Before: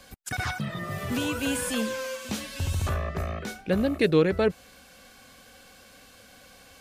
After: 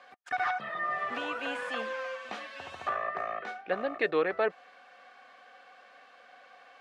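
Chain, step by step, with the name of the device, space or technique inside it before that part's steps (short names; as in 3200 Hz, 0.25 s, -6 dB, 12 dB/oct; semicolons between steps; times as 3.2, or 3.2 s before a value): tin-can telephone (BPF 620–2200 Hz; small resonant body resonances 730/1200/1800 Hz, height 9 dB)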